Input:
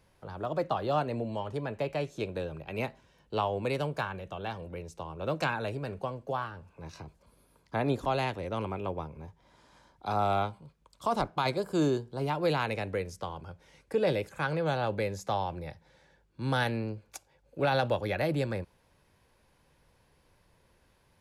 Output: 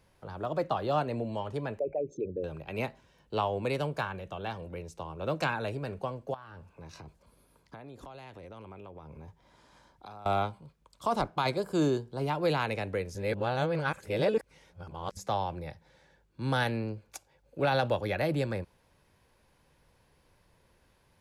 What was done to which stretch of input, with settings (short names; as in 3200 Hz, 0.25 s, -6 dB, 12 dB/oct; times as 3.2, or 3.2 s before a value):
1.79–2.44 formant sharpening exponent 3
6.34–10.26 compressor 16:1, threshold -42 dBFS
13.15–15.17 reverse